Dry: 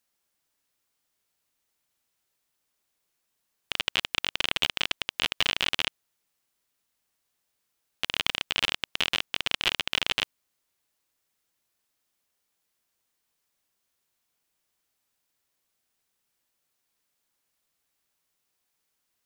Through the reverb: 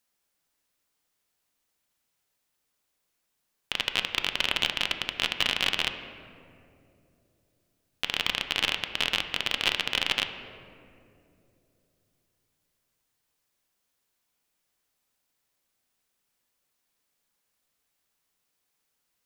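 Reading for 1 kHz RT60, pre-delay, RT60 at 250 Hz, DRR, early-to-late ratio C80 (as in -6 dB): 2.2 s, 4 ms, 3.7 s, 6.5 dB, 10.0 dB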